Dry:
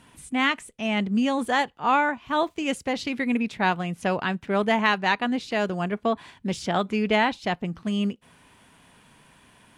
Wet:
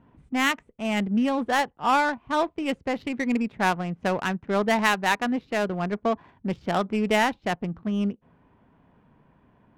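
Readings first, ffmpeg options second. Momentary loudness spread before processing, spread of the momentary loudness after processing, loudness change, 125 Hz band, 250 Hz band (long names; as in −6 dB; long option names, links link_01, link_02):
7 LU, 8 LU, −0.5 dB, −0.5 dB, −0.5 dB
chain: -af "adynamicsmooth=sensitivity=2.5:basefreq=930"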